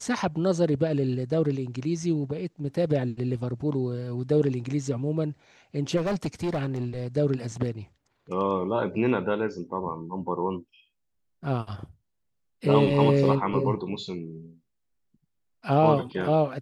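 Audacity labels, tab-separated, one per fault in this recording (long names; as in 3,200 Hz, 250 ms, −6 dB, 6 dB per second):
5.960000	7.070000	clipping −23.5 dBFS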